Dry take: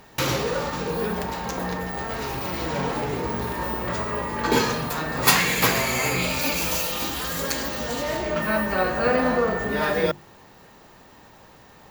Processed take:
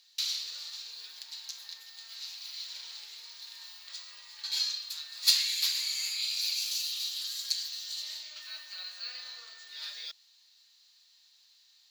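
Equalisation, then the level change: band-pass 4200 Hz, Q 4.7; differentiator; +8.5 dB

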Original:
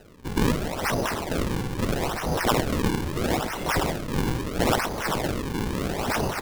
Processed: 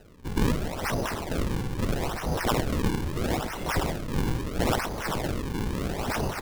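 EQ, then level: low shelf 120 Hz +6 dB; -4.0 dB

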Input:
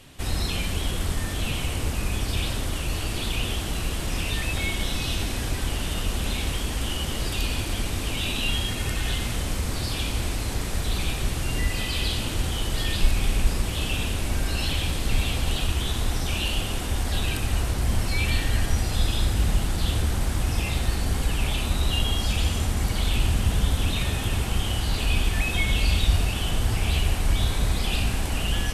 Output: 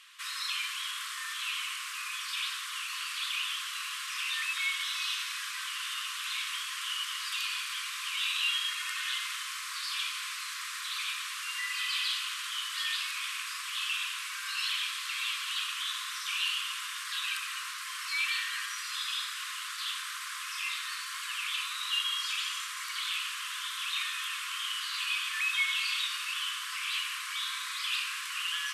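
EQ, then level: brick-wall FIR high-pass 1000 Hz; high shelf 7800 Hz -9.5 dB; 0.0 dB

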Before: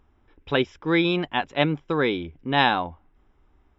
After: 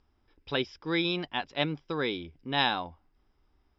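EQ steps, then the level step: synth low-pass 4900 Hz, resonance Q 8.6; -8.5 dB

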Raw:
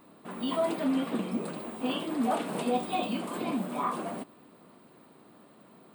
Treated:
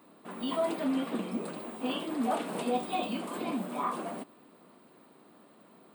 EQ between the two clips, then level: HPF 170 Hz 12 dB/oct; -1.5 dB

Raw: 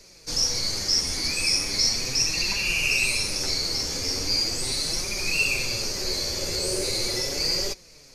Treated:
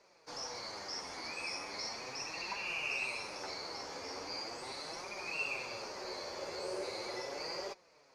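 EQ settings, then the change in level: band-pass 920 Hz, Q 1.6; -1.0 dB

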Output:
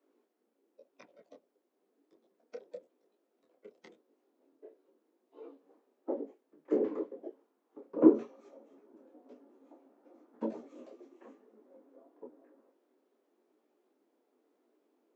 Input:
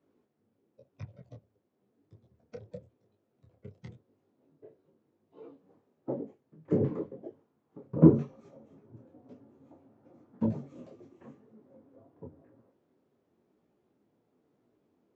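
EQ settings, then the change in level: steep high-pass 270 Hz 36 dB/oct; 0.0 dB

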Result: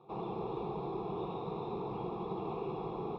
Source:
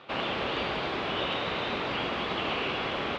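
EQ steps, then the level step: running mean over 29 samples; fixed phaser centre 390 Hz, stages 8; 0.0 dB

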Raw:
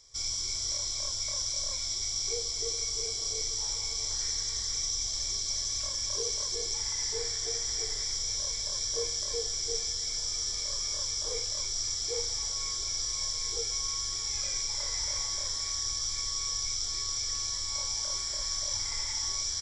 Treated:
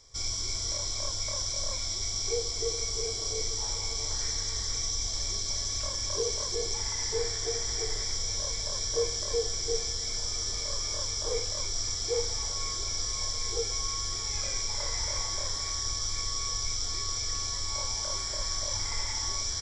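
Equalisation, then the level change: high shelf 2100 Hz -9 dB; +7.5 dB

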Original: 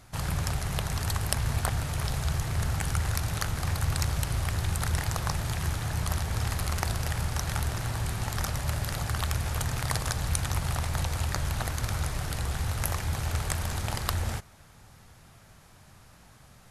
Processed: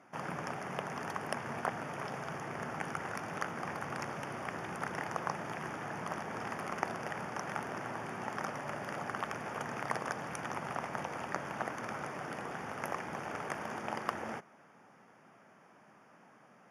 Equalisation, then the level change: running mean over 11 samples; HPF 210 Hz 24 dB/oct; 0.0 dB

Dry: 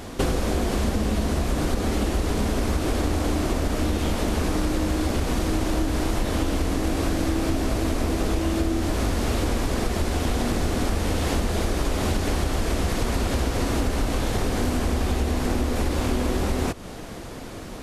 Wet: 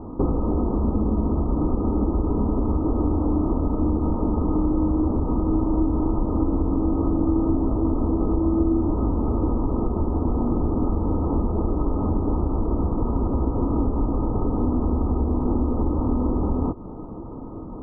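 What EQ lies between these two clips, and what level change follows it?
rippled Chebyshev low-pass 1300 Hz, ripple 9 dB; low shelf 240 Hz +7 dB; notch 370 Hz, Q 12; +3.5 dB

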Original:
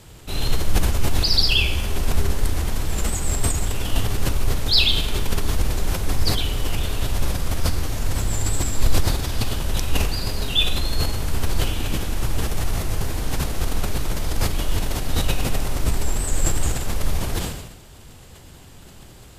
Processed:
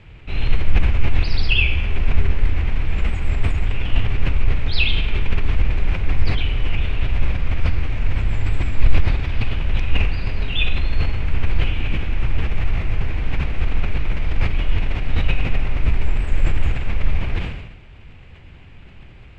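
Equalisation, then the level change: synth low-pass 2400 Hz, resonance Q 3.8; low shelf 160 Hz +10 dB; -5.0 dB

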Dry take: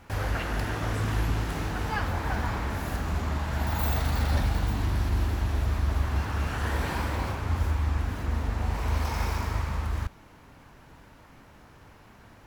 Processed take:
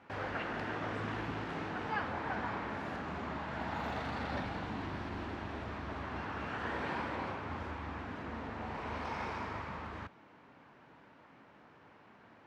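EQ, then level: BPF 190–3000 Hz; -4.5 dB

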